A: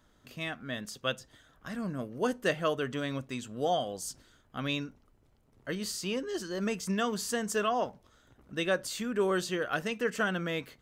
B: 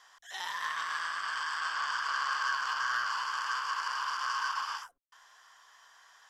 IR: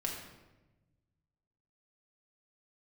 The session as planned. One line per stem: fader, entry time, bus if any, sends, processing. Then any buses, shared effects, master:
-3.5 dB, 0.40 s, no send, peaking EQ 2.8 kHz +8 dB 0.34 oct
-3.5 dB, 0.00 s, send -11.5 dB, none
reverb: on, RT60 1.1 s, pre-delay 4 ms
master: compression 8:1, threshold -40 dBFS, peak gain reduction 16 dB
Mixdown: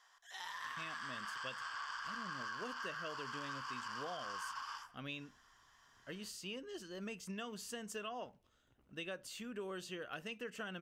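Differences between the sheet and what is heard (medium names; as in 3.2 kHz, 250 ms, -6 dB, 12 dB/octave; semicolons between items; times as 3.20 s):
stem A -3.5 dB -> -12.5 dB; stem B -3.5 dB -> -10.5 dB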